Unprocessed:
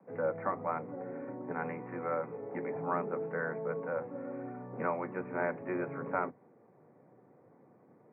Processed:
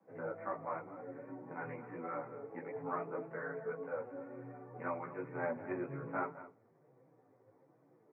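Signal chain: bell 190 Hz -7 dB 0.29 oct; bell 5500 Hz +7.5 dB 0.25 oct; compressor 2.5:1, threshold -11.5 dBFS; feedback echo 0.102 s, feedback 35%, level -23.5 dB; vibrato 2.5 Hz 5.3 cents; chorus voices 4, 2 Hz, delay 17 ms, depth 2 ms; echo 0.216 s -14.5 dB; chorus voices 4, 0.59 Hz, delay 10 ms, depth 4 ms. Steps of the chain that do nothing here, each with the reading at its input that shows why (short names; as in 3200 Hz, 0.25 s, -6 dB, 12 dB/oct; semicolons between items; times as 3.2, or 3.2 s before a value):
bell 5500 Hz: input band ends at 2300 Hz; compressor, threshold -11.5 dBFS: input peak -18.5 dBFS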